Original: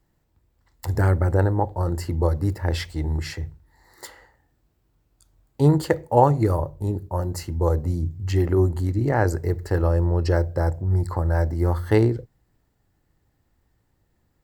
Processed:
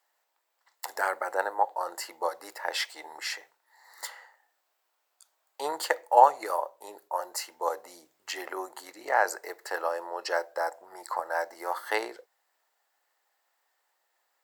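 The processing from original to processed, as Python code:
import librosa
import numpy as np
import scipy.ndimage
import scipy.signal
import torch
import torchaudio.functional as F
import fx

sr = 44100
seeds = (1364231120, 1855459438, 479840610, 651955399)

y = scipy.signal.sosfilt(scipy.signal.butter(4, 660.0, 'highpass', fs=sr, output='sos'), x)
y = y * librosa.db_to_amplitude(2.0)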